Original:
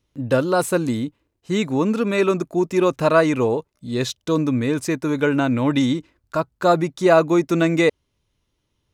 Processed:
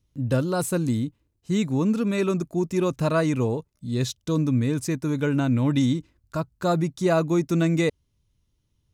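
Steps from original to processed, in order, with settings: tone controls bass +12 dB, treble +7 dB; trim -8.5 dB

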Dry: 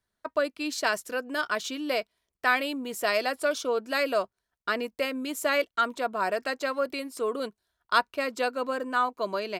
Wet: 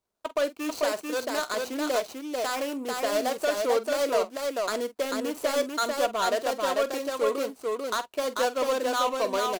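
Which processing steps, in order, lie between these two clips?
median filter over 25 samples; tone controls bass -12 dB, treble +9 dB; peak limiter -19 dBFS, peak gain reduction 10.5 dB; saturation -21.5 dBFS, distortion -21 dB; on a send: multi-tap echo 46/442 ms -14.5/-3 dB; on the sum: trim +5 dB

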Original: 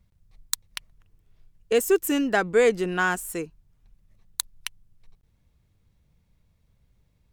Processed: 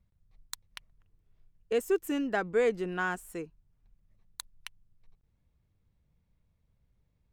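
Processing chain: treble shelf 3.8 kHz -9 dB; trim -7 dB

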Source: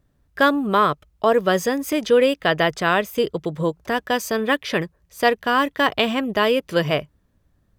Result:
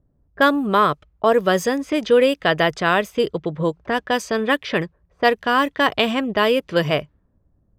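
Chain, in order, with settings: level-controlled noise filter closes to 700 Hz, open at -16 dBFS; trim +1 dB

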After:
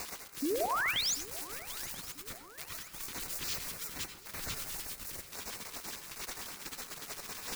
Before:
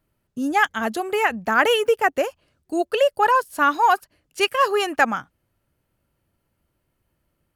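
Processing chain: one-bit comparator; pre-emphasis filter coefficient 0.9; spectral gate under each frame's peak -20 dB weak; bass shelf 270 Hz +11 dB; in parallel at -3 dB: peak limiter -31.5 dBFS, peak gain reduction 9.5 dB; on the sum: bit crusher 7-bit; painted sound rise, 0.42–1.15 s, 260–7400 Hz -31 dBFS; LFO notch square 9.9 Hz 690–3200 Hz; shuffle delay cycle 989 ms, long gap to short 3:1, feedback 55%, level -19.5 dB; on a send at -8.5 dB: reverberation RT60 0.40 s, pre-delay 83 ms

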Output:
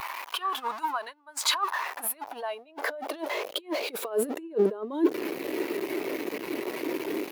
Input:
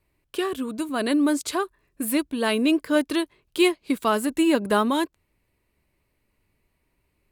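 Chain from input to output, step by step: jump at every zero crossing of -29 dBFS; peaking EQ 8.3 kHz -5.5 dB 0.47 oct; compressor with a negative ratio -27 dBFS, ratio -0.5; high-pass sweep 940 Hz -> 340 Hz, 1.53–5.39 s; spectral contrast expander 1.5:1

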